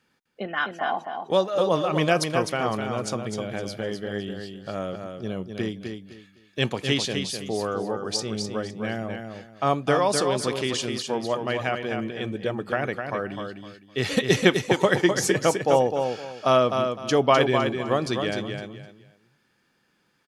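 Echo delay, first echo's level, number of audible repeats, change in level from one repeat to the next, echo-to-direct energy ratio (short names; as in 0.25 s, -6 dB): 0.255 s, -6.0 dB, 3, -12.0 dB, -5.5 dB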